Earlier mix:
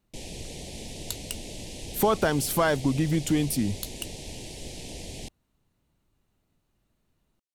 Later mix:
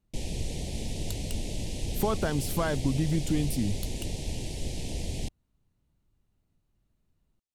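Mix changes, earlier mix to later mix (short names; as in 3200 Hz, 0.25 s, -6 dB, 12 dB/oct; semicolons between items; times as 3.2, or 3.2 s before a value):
speech -7.5 dB; master: add low shelf 200 Hz +10 dB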